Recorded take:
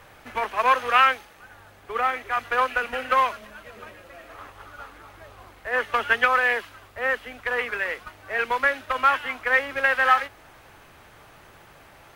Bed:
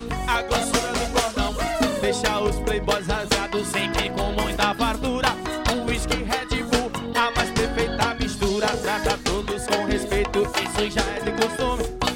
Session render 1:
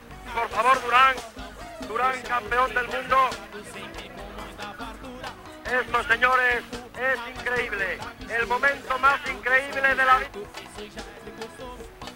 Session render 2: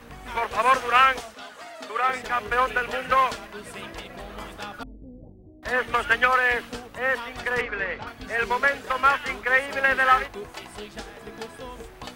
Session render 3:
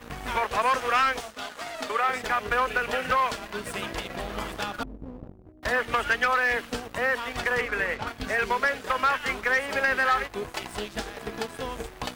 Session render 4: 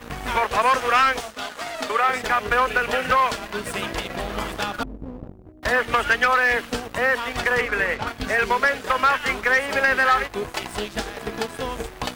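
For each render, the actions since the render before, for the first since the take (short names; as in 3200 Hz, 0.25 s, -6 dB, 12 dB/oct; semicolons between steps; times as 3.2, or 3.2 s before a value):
add bed -15.5 dB
1.34–2.09 weighting filter A; 4.83–5.63 Gaussian blur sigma 21 samples; 7.61–8.07 air absorption 170 m
sample leveller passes 2; compressor 2:1, threshold -29 dBFS, peak gain reduction 11 dB
gain +5 dB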